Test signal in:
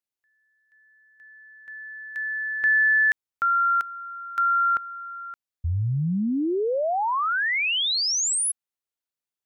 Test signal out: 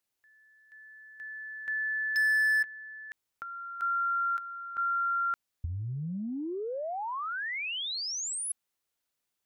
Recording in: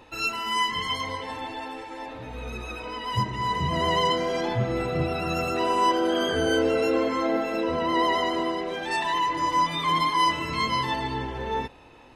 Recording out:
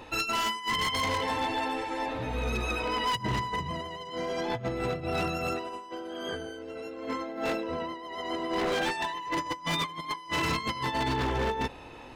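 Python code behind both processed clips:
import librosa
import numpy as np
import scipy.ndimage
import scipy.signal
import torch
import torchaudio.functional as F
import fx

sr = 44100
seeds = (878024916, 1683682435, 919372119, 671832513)

y = fx.over_compress(x, sr, threshold_db=-30.0, ratio=-0.5)
y = 10.0 ** (-22.5 / 20.0) * (np.abs((y / 10.0 ** (-22.5 / 20.0) + 3.0) % 4.0 - 2.0) - 1.0)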